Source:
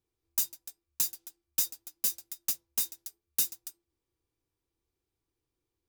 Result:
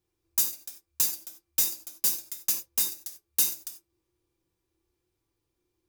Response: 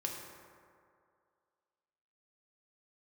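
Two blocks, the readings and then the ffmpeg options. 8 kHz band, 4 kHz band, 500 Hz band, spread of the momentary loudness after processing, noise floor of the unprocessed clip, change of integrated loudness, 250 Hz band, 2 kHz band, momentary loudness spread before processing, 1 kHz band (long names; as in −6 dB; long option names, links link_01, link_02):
+4.5 dB, +4.5 dB, +6.0 dB, 14 LU, below −85 dBFS, +4.5 dB, +5.0 dB, +5.5 dB, 16 LU, +6.0 dB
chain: -filter_complex "[1:a]atrim=start_sample=2205,atrim=end_sample=4410[link_01];[0:a][link_01]afir=irnorm=-1:irlink=0,volume=5dB"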